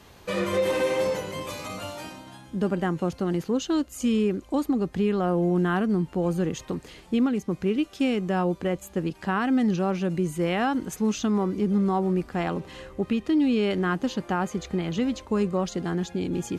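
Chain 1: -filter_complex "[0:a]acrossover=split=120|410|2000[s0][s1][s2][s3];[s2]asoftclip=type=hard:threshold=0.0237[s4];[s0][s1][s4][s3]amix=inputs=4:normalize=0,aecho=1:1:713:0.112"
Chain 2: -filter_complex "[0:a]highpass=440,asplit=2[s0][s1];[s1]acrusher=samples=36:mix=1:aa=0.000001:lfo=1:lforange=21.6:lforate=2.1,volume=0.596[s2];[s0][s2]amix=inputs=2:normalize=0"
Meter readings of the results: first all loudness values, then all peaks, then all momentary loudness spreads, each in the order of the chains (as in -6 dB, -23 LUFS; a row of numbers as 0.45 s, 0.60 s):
-27.0 LUFS, -29.5 LUFS; -15.0 dBFS, -10.5 dBFS; 10 LU, 8 LU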